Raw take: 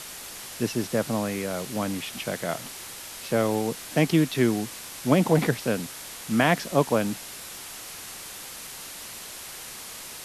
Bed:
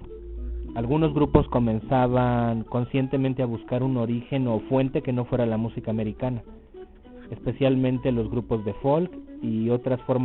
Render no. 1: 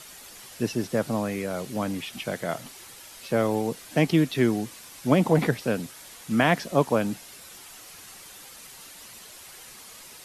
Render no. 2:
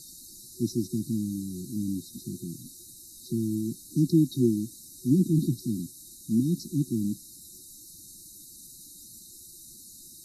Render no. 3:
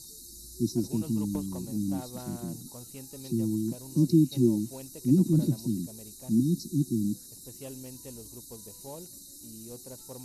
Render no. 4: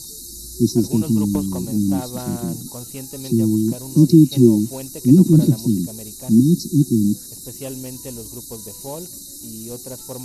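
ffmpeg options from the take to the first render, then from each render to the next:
-af "afftdn=nr=8:nf=-40"
-af "afftfilt=real='re*(1-between(b*sr/4096,370,3700))':imag='im*(1-between(b*sr/4096,370,3700))':win_size=4096:overlap=0.75,adynamicequalizer=threshold=0.001:dfrequency=4700:dqfactor=2.3:tfrequency=4700:tqfactor=2.3:attack=5:release=100:ratio=0.375:range=3:mode=cutabove:tftype=bell"
-filter_complex "[1:a]volume=-22dB[a];[0:a][a]amix=inputs=2:normalize=0"
-af "volume=11.5dB,alimiter=limit=-1dB:level=0:latency=1"

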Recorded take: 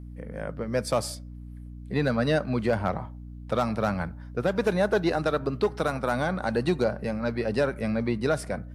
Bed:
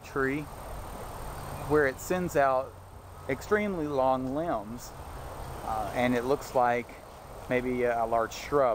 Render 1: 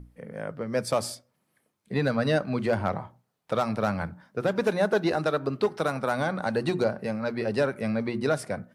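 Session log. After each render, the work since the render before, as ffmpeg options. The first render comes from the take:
-af "bandreject=f=60:t=h:w=6,bandreject=f=120:t=h:w=6,bandreject=f=180:t=h:w=6,bandreject=f=240:t=h:w=6,bandreject=f=300:t=h:w=6,bandreject=f=360:t=h:w=6"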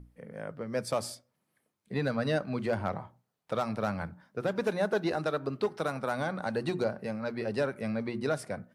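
-af "volume=-5dB"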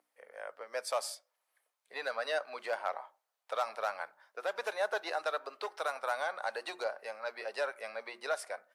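-af "highpass=f=600:w=0.5412,highpass=f=600:w=1.3066"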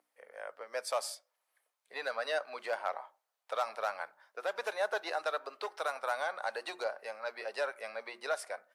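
-af anull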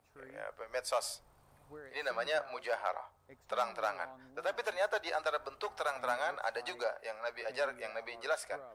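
-filter_complex "[1:a]volume=-26.5dB[a];[0:a][a]amix=inputs=2:normalize=0"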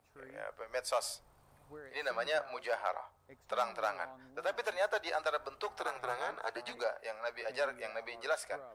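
-filter_complex "[0:a]asettb=1/sr,asplit=3[a][b][c];[a]atrim=end=5.804[d];[b]atrim=start=5.8:end=6.77,asetpts=PTS-STARTPTS,afade=t=in:d=0.004:c=qsin,afade=t=out:st=0.966:d=0.004:c=qsin,aeval=exprs='val(0)*sin(2*PI*120*n/s)':c=same[e];[c]atrim=start=6.766[f];[d][e]acrossfade=d=0.004:c1=hsin:c2=qsin[g];[g][f]acrossfade=d=0.004:c1=qsin:c2=hsin"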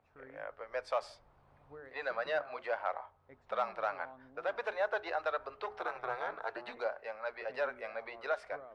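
-af "lowpass=2.7k,bandreject=f=60:t=h:w=6,bandreject=f=120:t=h:w=6,bandreject=f=180:t=h:w=6,bandreject=f=240:t=h:w=6,bandreject=f=300:t=h:w=6,bandreject=f=360:t=h:w=6,bandreject=f=420:t=h:w=6"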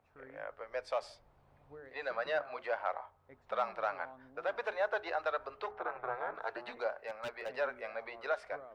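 -filter_complex "[0:a]asettb=1/sr,asplit=3[a][b][c];[a]atrim=end=0.694[d];[b]atrim=start=0.69:end=2.11,asetpts=PTS-STARTPTS,afade=t=in:d=0.004:c=qsin,afade=t=out:st=1.416:d=0.004:c=qsin,equalizer=f=1.2k:w=1.4:g=-4[e];[c]atrim=start=2.106[f];[d][e]acrossfade=d=0.004:c1=hsin:c2=qsin[g];[g][f]acrossfade=d=0.004:c1=qsin:c2=hsin,asettb=1/sr,asplit=3[h][i][j];[h]atrim=end=5.714[k];[i]atrim=start=5.71:end=6.35,asetpts=PTS-STARTPTS,afade=t=in:d=0.004:c=qsin,afade=t=out:st=0.636:d=0.004:c=qsin,lowpass=1.9k[l];[j]atrim=start=6.346[m];[k][l]acrossfade=d=0.004:c1=hsin:c2=qsin[n];[n][m]acrossfade=d=0.004:c1=qsin:c2=hsin,asplit=3[o][p][q];[o]afade=t=out:st=6.9:d=0.02[r];[p]aeval=exprs='0.0211*(abs(mod(val(0)/0.0211+3,4)-2)-1)':c=same,afade=t=in:st=6.9:d=0.02,afade=t=out:st=7.5:d=0.02[s];[q]afade=t=in:st=7.5:d=0.02[t];[r][s][t]amix=inputs=3:normalize=0"

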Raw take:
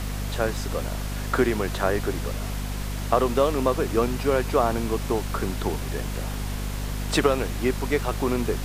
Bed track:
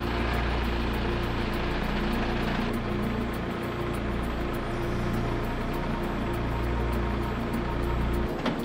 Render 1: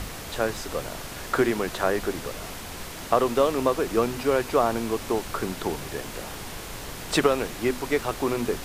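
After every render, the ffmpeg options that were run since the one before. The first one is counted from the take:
-af "bandreject=f=50:t=h:w=6,bandreject=f=100:t=h:w=6,bandreject=f=150:t=h:w=6,bandreject=f=200:t=h:w=6,bandreject=f=250:t=h:w=6"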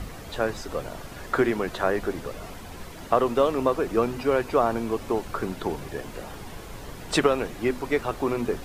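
-af "afftdn=nr=9:nf=-38"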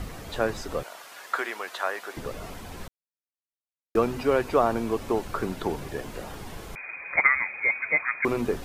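-filter_complex "[0:a]asettb=1/sr,asplit=3[a][b][c];[a]atrim=end=0.834[d];[b]atrim=start=0.83:end=2.17,asetpts=PTS-STARTPTS,afade=t=in:d=0.004:c=qsin,afade=t=out:st=1.336:d=0.004:c=qsin,highpass=860[e];[c]atrim=start=2.166[f];[d][e]acrossfade=d=0.004:c1=hsin:c2=qsin[g];[g][f]acrossfade=d=0.004:c1=qsin:c2=hsin,asettb=1/sr,asplit=3[h][i][j];[h]atrim=end=6.754[k];[i]atrim=start=6.75:end=8.25,asetpts=PTS-STARTPTS,afade=t=in:d=0.004:c=qsin,afade=t=out:st=1.496:d=0.004:c=qsin,lowpass=f=2.1k:t=q:w=0.5098,lowpass=f=2.1k:t=q:w=0.6013,lowpass=f=2.1k:t=q:w=0.9,lowpass=f=2.1k:t=q:w=2.563,afreqshift=-2500[l];[j]atrim=start=8.246[m];[k][l]acrossfade=d=0.004:c1=hsin:c2=qsin[n];[n][m]acrossfade=d=0.004:c1=qsin:c2=hsin,asplit=3[o][p][q];[o]atrim=end=2.88,asetpts=PTS-STARTPTS,afade=t=out:st=2.876:d=0.004:c=hsin[r];[p]atrim=start=2.88:end=3.95,asetpts=PTS-STARTPTS,volume=0[s];[q]atrim=start=3.95,asetpts=PTS-STARTPTS,afade=t=in:d=0.004:c=hsin[t];[r][s][t]concat=n=3:v=0:a=1"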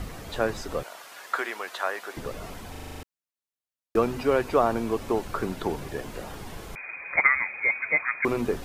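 -filter_complex "[0:a]asplit=9[a][b][c][d][e][f][g][h][i];[a]atrim=end=2.752[j];[b]atrim=start=2.708:end=2.752[k];[c]atrim=start=2.708:end=2.752[l];[d]atrim=start=2.708:end=2.752[m];[e]atrim=start=2.708:end=2.752[n];[f]atrim=start=2.708:end=2.752[o];[g]atrim=start=2.708:end=2.752[p];[h]atrim=start=2.708:end=2.752[q];[i]atrim=start=3.028[r];[j][k]acrossfade=d=0.004:c1=hsin:c2=hsin[s];[s][l]acrossfade=d=0.004:c1=hsin:c2=hsin[t];[t][m]acrossfade=d=0.004:c1=hsin:c2=hsin[u];[u][n]acrossfade=d=0.004:c1=hsin:c2=hsin[v];[v][o]acrossfade=d=0.004:c1=hsin:c2=hsin[w];[w][p]acrossfade=d=0.004:c1=hsin:c2=hsin[x];[x][q]acrossfade=d=0.004:c1=hsin:c2=hsin[y];[y][r]acrossfade=d=0.004:c1=hsin:c2=hsin"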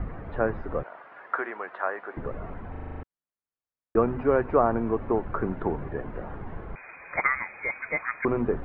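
-af "lowpass=f=1.8k:w=0.5412,lowpass=f=1.8k:w=1.3066,lowshelf=f=160:g=4.5"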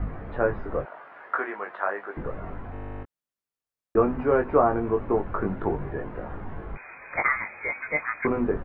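-filter_complex "[0:a]asplit=2[a][b];[b]adelay=20,volume=-4dB[c];[a][c]amix=inputs=2:normalize=0"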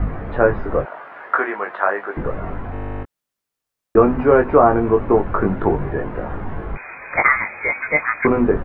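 -af "volume=9dB,alimiter=limit=-1dB:level=0:latency=1"

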